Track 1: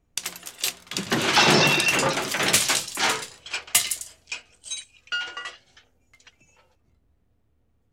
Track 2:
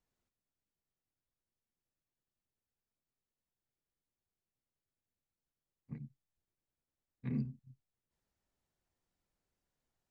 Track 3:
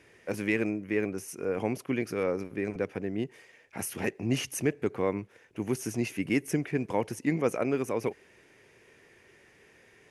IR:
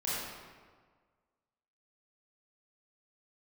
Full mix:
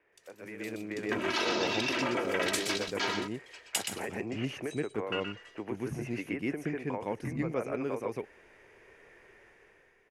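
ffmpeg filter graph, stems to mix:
-filter_complex "[0:a]afwtdn=0.0501,aecho=1:1:3.1:0.87,acompressor=threshold=-22dB:ratio=12,volume=-18.5dB,asplit=2[link_01][link_02];[link_02]volume=-6dB[link_03];[1:a]asubboost=boost=12:cutoff=120,volume=2dB[link_04];[2:a]acrossover=split=3500[link_05][link_06];[link_06]acompressor=threshold=-48dB:ratio=4:attack=1:release=60[link_07];[link_05][link_07]amix=inputs=2:normalize=0,volume=-8.5dB,asplit=2[link_08][link_09];[link_09]volume=-10dB[link_10];[link_04][link_08]amix=inputs=2:normalize=0,acrossover=split=360 2500:gain=0.178 1 0.0708[link_11][link_12][link_13];[link_11][link_12][link_13]amix=inputs=3:normalize=0,acompressor=threshold=-46dB:ratio=10,volume=0dB[link_14];[link_03][link_10]amix=inputs=2:normalize=0,aecho=0:1:123:1[link_15];[link_01][link_14][link_15]amix=inputs=3:normalize=0,dynaudnorm=framelen=140:gausssize=11:maxgain=12dB"

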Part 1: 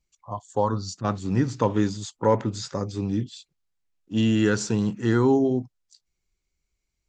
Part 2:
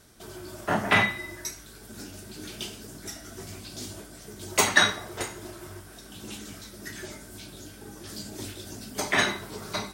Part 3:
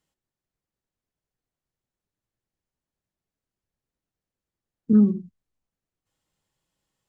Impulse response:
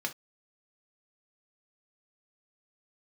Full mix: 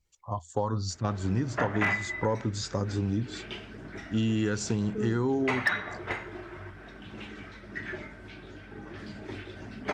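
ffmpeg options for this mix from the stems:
-filter_complex "[0:a]equalizer=frequency=82:width=4.1:gain=14,volume=-0.5dB[link_01];[1:a]lowpass=frequency=2100:width_type=q:width=1.9,aphaser=in_gain=1:out_gain=1:delay=2.6:decay=0.22:speed=1:type=sinusoidal,asoftclip=type=hard:threshold=-6.5dB,adelay=900,volume=-1dB[link_02];[2:a]aecho=1:1:2.2:0.88,adelay=50,volume=-6.5dB[link_03];[link_01][link_02][link_03]amix=inputs=3:normalize=0,acompressor=threshold=-25dB:ratio=4"

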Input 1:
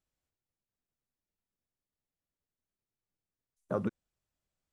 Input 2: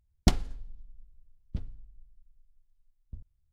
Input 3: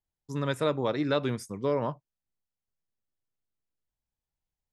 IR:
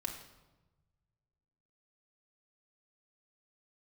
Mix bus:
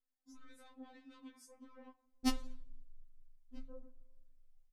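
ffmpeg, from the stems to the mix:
-filter_complex "[0:a]lowpass=frequency=1200:width=0.5412,lowpass=frequency=1200:width=1.3066,alimiter=level_in=6.5dB:limit=-24dB:level=0:latency=1:release=293,volume=-6.5dB,volume=-10.5dB,asplit=2[link_01][link_02];[link_02]volume=-11dB[link_03];[1:a]adelay=2000,volume=-3dB[link_04];[2:a]acompressor=threshold=-33dB:ratio=6,flanger=delay=17:depth=4.5:speed=0.91,asoftclip=type=tanh:threshold=-37dB,volume=-3.5dB,asplit=2[link_05][link_06];[link_06]volume=-19dB[link_07];[link_01][link_05]amix=inputs=2:normalize=0,acompressor=threshold=-52dB:ratio=6,volume=0dB[link_08];[3:a]atrim=start_sample=2205[link_09];[link_03][link_07]amix=inputs=2:normalize=0[link_10];[link_10][link_09]afir=irnorm=-1:irlink=0[link_11];[link_04][link_08][link_11]amix=inputs=3:normalize=0,afftfilt=real='re*3.46*eq(mod(b,12),0)':imag='im*3.46*eq(mod(b,12),0)':win_size=2048:overlap=0.75"

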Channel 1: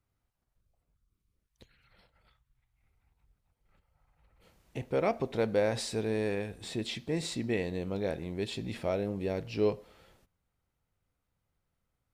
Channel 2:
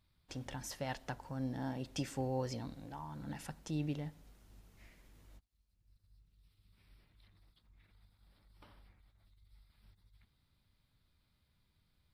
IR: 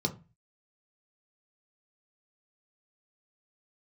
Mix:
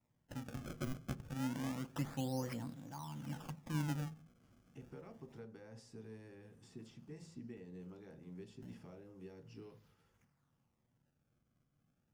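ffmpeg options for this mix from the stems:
-filter_complex "[0:a]lowshelf=frequency=160:gain=-9,bandreject=frequency=3100:width=15,acrossover=split=120|860[link_01][link_02][link_03];[link_01]acompressor=threshold=-55dB:ratio=4[link_04];[link_02]acompressor=threshold=-38dB:ratio=4[link_05];[link_03]acompressor=threshold=-47dB:ratio=4[link_06];[link_04][link_05][link_06]amix=inputs=3:normalize=0,volume=-15dB,asplit=2[link_07][link_08];[link_08]volume=-8.5dB[link_09];[1:a]highpass=150,acrusher=samples=27:mix=1:aa=0.000001:lfo=1:lforange=43.2:lforate=0.28,volume=-1dB,asplit=2[link_10][link_11];[link_11]volume=-16dB[link_12];[2:a]atrim=start_sample=2205[link_13];[link_09][link_12]amix=inputs=2:normalize=0[link_14];[link_14][link_13]afir=irnorm=-1:irlink=0[link_15];[link_07][link_10][link_15]amix=inputs=3:normalize=0"

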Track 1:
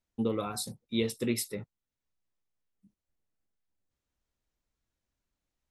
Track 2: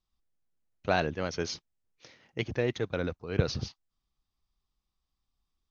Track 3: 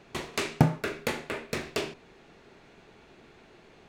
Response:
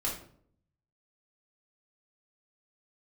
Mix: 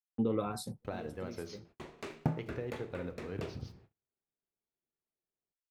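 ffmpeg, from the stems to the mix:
-filter_complex "[0:a]alimiter=limit=-22dB:level=0:latency=1:release=94,volume=1dB[link_01];[1:a]acompressor=threshold=-33dB:ratio=8,aeval=exprs='val(0)*gte(abs(val(0)),0.00211)':channel_layout=same,volume=-5dB,asplit=3[link_02][link_03][link_04];[link_03]volume=-10.5dB[link_05];[2:a]adelay=1650,volume=-10.5dB[link_06];[link_04]apad=whole_len=251632[link_07];[link_01][link_07]sidechaincompress=threshold=-48dB:ratio=8:attack=7.2:release=1150[link_08];[3:a]atrim=start_sample=2205[link_09];[link_05][link_09]afir=irnorm=-1:irlink=0[link_10];[link_08][link_02][link_06][link_10]amix=inputs=4:normalize=0,agate=range=-34dB:threshold=-57dB:ratio=16:detection=peak,highshelf=frequency=2100:gain=-11"

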